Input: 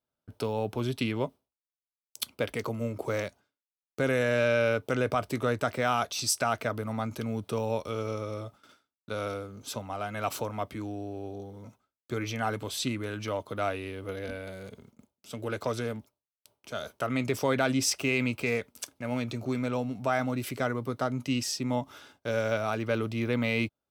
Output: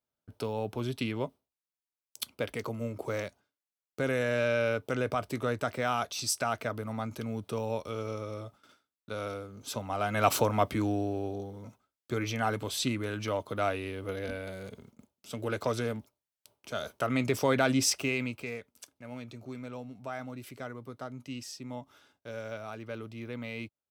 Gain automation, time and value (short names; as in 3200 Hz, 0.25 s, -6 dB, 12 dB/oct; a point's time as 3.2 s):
9.51 s -3 dB
10.28 s +7 dB
10.93 s +7 dB
11.61 s +0.5 dB
17.88 s +0.5 dB
18.6 s -11 dB